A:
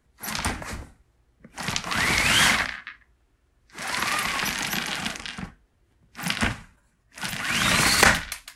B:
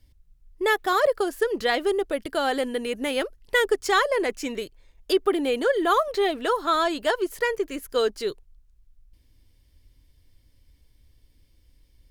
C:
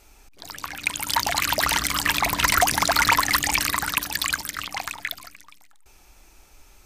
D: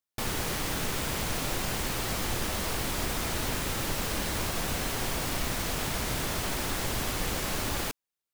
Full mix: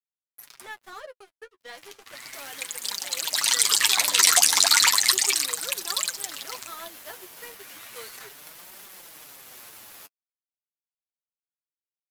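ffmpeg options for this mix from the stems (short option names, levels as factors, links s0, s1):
-filter_complex "[0:a]asoftclip=type=tanh:threshold=0.211,adelay=150,volume=0.299[s0];[1:a]highshelf=f=5900:g=-3.5,volume=0.316[s1];[2:a]equalizer=f=4000:t=o:w=1:g=9,equalizer=f=8000:t=o:w=1:g=12,equalizer=f=16000:t=o:w=1:g=4,adelay=1750,volume=0.891,afade=t=in:st=3.18:d=0.51:silence=0.298538,afade=t=out:st=4.82:d=0.7:silence=0.446684,afade=t=out:st=6.47:d=0.37:silence=0.237137[s2];[3:a]adelay=2150,volume=0.794[s3];[s0][s3]amix=inputs=2:normalize=0,equalizer=f=12000:w=2.1:g=12,acompressor=threshold=0.0282:ratio=6,volume=1[s4];[s1][s2][s4]amix=inputs=3:normalize=0,highpass=f=830:p=1,aeval=exprs='sgn(val(0))*max(abs(val(0))-0.00944,0)':c=same,flanger=delay=4.9:depth=6.4:regen=16:speed=0.34:shape=triangular"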